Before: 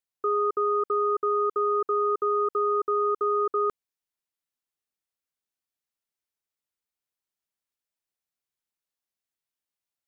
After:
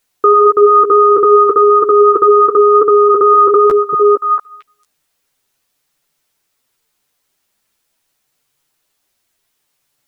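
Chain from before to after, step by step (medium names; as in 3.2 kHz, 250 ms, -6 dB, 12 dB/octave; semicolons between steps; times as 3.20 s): on a send: repeats whose band climbs or falls 227 ms, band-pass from 160 Hz, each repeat 1.4 oct, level -5.5 dB; on the sum: chorus voices 4, 0.31 Hz, delay 11 ms, depth 4.4 ms; loudness maximiser +27 dB; trim -1 dB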